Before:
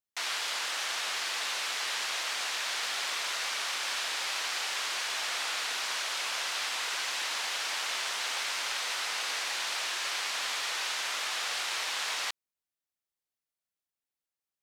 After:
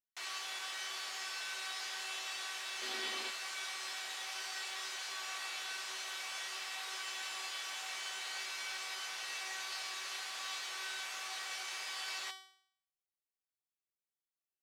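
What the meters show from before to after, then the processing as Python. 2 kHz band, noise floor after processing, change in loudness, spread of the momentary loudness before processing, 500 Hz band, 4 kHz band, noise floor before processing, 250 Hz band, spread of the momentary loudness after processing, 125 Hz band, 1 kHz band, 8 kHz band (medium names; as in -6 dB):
-8.5 dB, under -85 dBFS, -9.0 dB, 0 LU, -9.5 dB, -9.0 dB, under -85 dBFS, -4.5 dB, 1 LU, no reading, -9.0 dB, -9.0 dB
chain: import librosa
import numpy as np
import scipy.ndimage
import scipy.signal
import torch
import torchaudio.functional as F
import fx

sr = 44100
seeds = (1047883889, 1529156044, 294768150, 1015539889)

y = fx.spec_paint(x, sr, seeds[0], shape='noise', start_s=2.81, length_s=0.5, low_hz=210.0, high_hz=5000.0, level_db=-34.0)
y = fx.comb_fb(y, sr, f0_hz=380.0, decay_s=0.6, harmonics='all', damping=0.0, mix_pct=90)
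y = F.gain(torch.from_numpy(y), 6.5).numpy()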